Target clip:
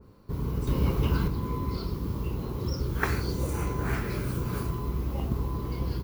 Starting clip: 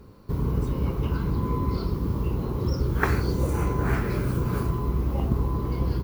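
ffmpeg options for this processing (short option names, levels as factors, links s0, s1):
-filter_complex "[0:a]asettb=1/sr,asplit=3[s0][s1][s2];[s0]atrim=end=0.674[s3];[s1]atrim=start=0.67:end=1.28,asetpts=PTS-STARTPTS,afade=t=in:d=0.004:c=qsin,afade=t=out:st=0.606:d=0.004:c=qsin,acontrast=51[s4];[s2]atrim=start=1.276[s5];[s3][s4]acrossfade=d=0.004:c1=hsin:c2=qsin[s6];[s6][s5]acrossfade=d=0.004:c1=qsin:c2=hsin,adynamicequalizer=threshold=0.00501:dfrequency=2000:dqfactor=0.7:tfrequency=2000:tqfactor=0.7:attack=5:release=100:ratio=0.375:range=3:mode=boostabove:tftype=highshelf,volume=0.562"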